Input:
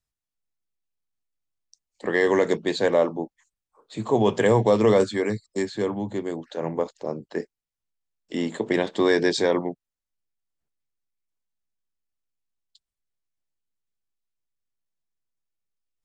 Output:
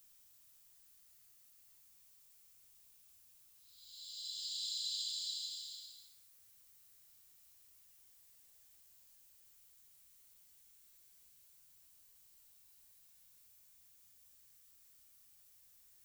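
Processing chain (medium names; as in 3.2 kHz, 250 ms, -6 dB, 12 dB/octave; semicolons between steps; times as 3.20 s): RIAA curve recording; whisper effect; Paulstretch 5.3×, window 0.50 s, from 11.83 s; trim +15 dB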